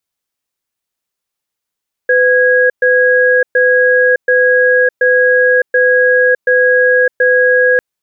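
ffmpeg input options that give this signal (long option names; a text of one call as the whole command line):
ffmpeg -f lavfi -i "aevalsrc='0.335*(sin(2*PI*503*t)+sin(2*PI*1650*t))*clip(min(mod(t,0.73),0.61-mod(t,0.73))/0.005,0,1)':duration=5.7:sample_rate=44100" out.wav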